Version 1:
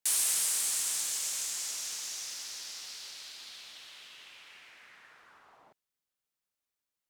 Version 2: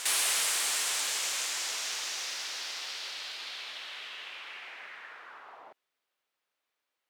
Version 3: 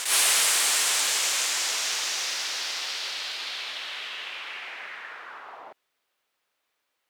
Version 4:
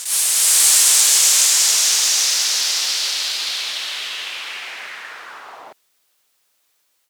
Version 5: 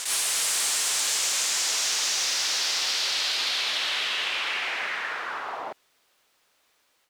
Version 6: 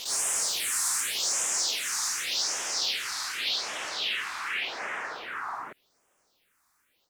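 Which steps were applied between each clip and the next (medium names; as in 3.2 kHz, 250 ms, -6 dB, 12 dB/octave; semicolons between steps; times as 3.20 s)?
three-band isolator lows -17 dB, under 320 Hz, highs -13 dB, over 3.9 kHz; in parallel at -6 dB: hard clipper -35 dBFS, distortion -18 dB; on the sum: reverse echo 861 ms -8 dB; trim +7 dB
attacks held to a fixed rise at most 120 dB/s; trim +7 dB
level rider gain up to 13 dB; tone controls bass +3 dB, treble +13 dB; trim -8 dB
low-pass 2.7 kHz 6 dB/octave; compression, threshold -27 dBFS, peak gain reduction 9 dB; saturation -21 dBFS, distortion -23 dB; trim +5 dB
phase shifter stages 4, 0.86 Hz, lowest notch 480–4100 Hz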